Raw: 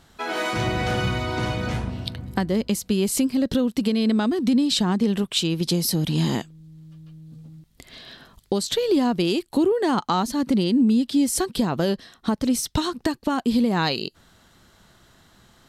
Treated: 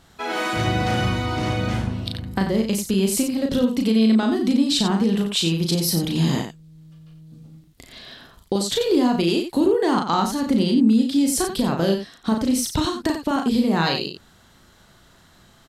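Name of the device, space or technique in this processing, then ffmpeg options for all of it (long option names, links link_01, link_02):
slapback doubling: -filter_complex "[0:a]asplit=3[link_01][link_02][link_03];[link_02]adelay=36,volume=-4dB[link_04];[link_03]adelay=90,volume=-8dB[link_05];[link_01][link_04][link_05]amix=inputs=3:normalize=0"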